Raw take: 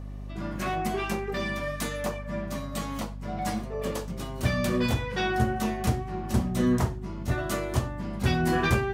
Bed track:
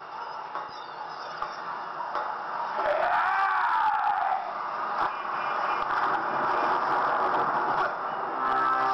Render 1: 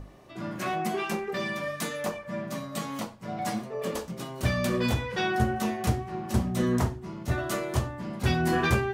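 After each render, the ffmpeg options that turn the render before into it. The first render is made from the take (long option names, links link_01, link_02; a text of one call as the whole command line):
ffmpeg -i in.wav -af "bandreject=frequency=50:width_type=h:width=6,bandreject=frequency=100:width_type=h:width=6,bandreject=frequency=150:width_type=h:width=6,bandreject=frequency=200:width_type=h:width=6,bandreject=frequency=250:width_type=h:width=6,bandreject=frequency=300:width_type=h:width=6" out.wav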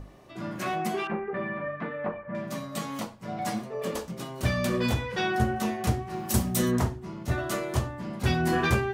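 ffmpeg -i in.wav -filter_complex "[0:a]asettb=1/sr,asplit=3[link_01][link_02][link_03];[link_01]atrim=end=1.074[link_04];[link_02]atrim=start=1.07:end=2.35,asetpts=PTS-STARTPTS,afade=type=in:duration=0.004:curve=qsin,afade=type=out:start_time=1.276:duration=0.004:curve=qsin,lowpass=frequency=2000:width=0.5412,lowpass=frequency=2000:width=1.3066[link_05];[link_03]atrim=start=2.346[link_06];[link_04][link_05]acrossfade=duration=0.004:curve1=hsin:curve2=qsin[link_07];[link_07][link_06]acrossfade=duration=0.004:curve1=qsin:curve2=hsin,asplit=3[link_08][link_09][link_10];[link_08]afade=type=out:start_time=6.09:duration=0.02[link_11];[link_09]aemphasis=mode=production:type=75kf,afade=type=in:start_time=6.09:duration=0.02,afade=type=out:start_time=6.7:duration=0.02[link_12];[link_10]afade=type=in:start_time=6.7:duration=0.02[link_13];[link_11][link_12][link_13]amix=inputs=3:normalize=0" out.wav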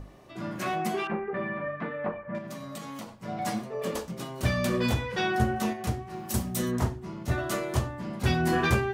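ffmpeg -i in.wav -filter_complex "[0:a]asettb=1/sr,asplit=3[link_01][link_02][link_03];[link_01]atrim=end=2.384[link_04];[link_02]atrim=start=2.38:end=3.09,asetpts=PTS-STARTPTS,afade=type=in:duration=0.004:curve=qsin,afade=type=out:start_time=0.706:duration=0.004:curve=qsin,acompressor=threshold=-35dB:ratio=6:attack=3.2:release=140:knee=1:detection=peak[link_05];[link_03]atrim=start=3.086[link_06];[link_04][link_05]acrossfade=duration=0.004:curve1=hsin:curve2=qsin[link_07];[link_07][link_06]acrossfade=duration=0.004:curve1=qsin:curve2=hsin,asplit=3[link_08][link_09][link_10];[link_08]atrim=end=5.732[link_11];[link_09]atrim=start=5.728:end=6.822,asetpts=PTS-STARTPTS,volume=-4dB[link_12];[link_10]atrim=start=6.818[link_13];[link_11][link_12]acrossfade=duration=0.004:curve1=hsin:curve2=hsin[link_14];[link_14][link_13]acrossfade=duration=0.004:curve1=hsin:curve2=hsin" out.wav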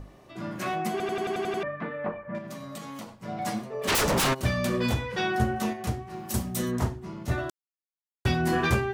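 ffmpeg -i in.wav -filter_complex "[0:a]asplit=3[link_01][link_02][link_03];[link_01]afade=type=out:start_time=3.87:duration=0.02[link_04];[link_02]aeval=exprs='0.0944*sin(PI/2*8.91*val(0)/0.0944)':channel_layout=same,afade=type=in:start_time=3.87:duration=0.02,afade=type=out:start_time=4.33:duration=0.02[link_05];[link_03]afade=type=in:start_time=4.33:duration=0.02[link_06];[link_04][link_05][link_06]amix=inputs=3:normalize=0,asplit=11[link_07][link_08][link_09][link_10][link_11][link_12][link_13][link_14][link_15][link_16][link_17];[link_07]atrim=end=1.002[link_18];[link_08]atrim=start=0.908:end=1.002[link_19];[link_09]atrim=start=0.908:end=1.002[link_20];[link_10]atrim=start=0.908:end=1.002[link_21];[link_11]atrim=start=0.908:end=1.002[link_22];[link_12]atrim=start=0.908:end=1.002[link_23];[link_13]atrim=start=0.908:end=1.002[link_24];[link_14]atrim=start=0.908:end=1.002[link_25];[link_15]atrim=start=1.628:end=7.5,asetpts=PTS-STARTPTS,afade=type=out:start_time=5.868:duration=0.004:curve=hsin[link_26];[link_16]atrim=start=7.5:end=8.25,asetpts=PTS-STARTPTS,volume=0[link_27];[link_17]atrim=start=8.25,asetpts=PTS-STARTPTS,afade=type=in:duration=0.004:curve=hsin[link_28];[link_18][link_19]acrossfade=duration=0.004:curve1=hsin:curve2=hsin[link_29];[link_29][link_20]acrossfade=duration=0.004:curve1=hsin:curve2=hsin[link_30];[link_30][link_21]acrossfade=duration=0.004:curve1=hsin:curve2=hsin[link_31];[link_31][link_22]acrossfade=duration=0.004:curve1=hsin:curve2=hsin[link_32];[link_32][link_23]acrossfade=duration=0.004:curve1=hsin:curve2=hsin[link_33];[link_33][link_24]acrossfade=duration=0.004:curve1=hsin:curve2=hsin[link_34];[link_34][link_25]acrossfade=duration=0.004:curve1=hsin:curve2=hsin[link_35];[link_26][link_27][link_28]concat=n=3:v=0:a=1[link_36];[link_35][link_36]acrossfade=duration=0.004:curve1=hsin:curve2=hsin" out.wav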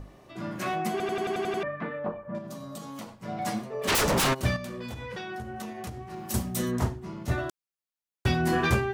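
ffmpeg -i in.wav -filter_complex "[0:a]asettb=1/sr,asplit=3[link_01][link_02][link_03];[link_01]atrim=end=1.994[link_04];[link_02]atrim=start=1.99:end=2.98,asetpts=PTS-STARTPTS,afade=type=in:duration=0.004:curve=qsin,afade=type=out:start_time=0.986:duration=0.004:curve=qsin,equalizer=frequency=2100:width_type=o:width=0.88:gain=-10.5[link_05];[link_03]atrim=start=2.976[link_06];[link_04][link_05]acrossfade=duration=0.004:curve1=hsin:curve2=qsin[link_07];[link_07][link_06]acrossfade=duration=0.004:curve1=qsin:curve2=hsin,asettb=1/sr,asplit=3[link_08][link_09][link_10];[link_08]atrim=end=4.564[link_11];[link_09]atrim=start=4.56:end=6.22,asetpts=PTS-STARTPTS,afade=type=in:duration=0.004:curve=qsin,afade=type=out:start_time=1.656:duration=0.004:curve=qsin,acompressor=threshold=-33dB:ratio=12:attack=3.2:release=140:knee=1:detection=peak[link_12];[link_10]atrim=start=6.216[link_13];[link_11][link_12]acrossfade=duration=0.004:curve1=hsin:curve2=qsin[link_14];[link_14][link_13]acrossfade=duration=0.004:curve1=qsin:curve2=hsin" out.wav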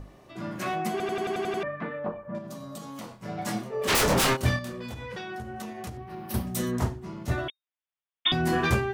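ffmpeg -i in.wav -filter_complex "[0:a]asettb=1/sr,asplit=3[link_01][link_02][link_03];[link_01]atrim=end=3.014[link_04];[link_02]atrim=start=3.01:end=4.73,asetpts=PTS-STARTPTS,afade=type=in:duration=0.004:curve=qsin,afade=type=out:start_time=1.716:duration=0.004:curve=qsin,asplit=2[link_05][link_06];[link_06]adelay=25,volume=-4dB[link_07];[link_05][link_07]amix=inputs=2:normalize=0,atrim=end_sample=75852[link_08];[link_03]atrim=start=4.726[link_09];[link_04][link_08]acrossfade=duration=0.004:curve1=hsin:curve2=qsin[link_10];[link_10][link_09]acrossfade=duration=0.004:curve1=qsin:curve2=hsin,asettb=1/sr,asplit=3[link_11][link_12][link_13];[link_11]atrim=end=5.974[link_14];[link_12]atrim=start=5.97:end=6.47,asetpts=PTS-STARTPTS,afade=type=in:duration=0.004:curve=qsin,afade=type=out:start_time=0.496:duration=0.004:curve=qsin,equalizer=frequency=7300:width_type=o:width=0.69:gain=-15[link_15];[link_13]atrim=start=6.466[link_16];[link_14][link_15]acrossfade=duration=0.004:curve1=hsin:curve2=qsin[link_17];[link_17][link_16]acrossfade=duration=0.004:curve1=qsin:curve2=hsin,asettb=1/sr,asplit=3[link_18][link_19][link_20];[link_18]atrim=end=7.484[link_21];[link_19]atrim=start=7.48:end=8.32,asetpts=PTS-STARTPTS,afade=type=in:duration=0.004:curve=qsin,afade=type=out:start_time=0.836:duration=0.004:curve=qsin,lowpass=frequency=3100:width_type=q:width=0.5098,lowpass=frequency=3100:width_type=q:width=0.6013,lowpass=frequency=3100:width_type=q:width=0.9,lowpass=frequency=3100:width_type=q:width=2.563,afreqshift=-3700[link_22];[link_20]atrim=start=8.316[link_23];[link_21][link_22]acrossfade=duration=0.004:curve1=hsin:curve2=qsin[link_24];[link_24][link_23]acrossfade=duration=0.004:curve1=qsin:curve2=hsin" out.wav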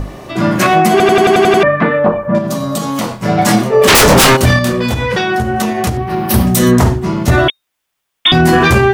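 ffmpeg -i in.wav -af "acontrast=61,alimiter=level_in=16dB:limit=-1dB:release=50:level=0:latency=1" out.wav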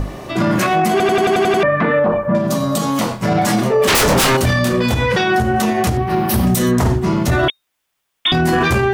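ffmpeg -i in.wav -af "alimiter=limit=-7.5dB:level=0:latency=1:release=22" out.wav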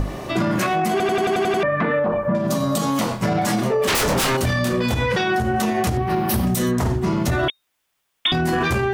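ffmpeg -i in.wav -af "acompressor=threshold=-17dB:ratio=6" out.wav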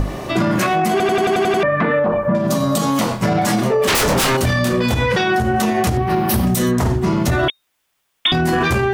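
ffmpeg -i in.wav -af "volume=3.5dB" out.wav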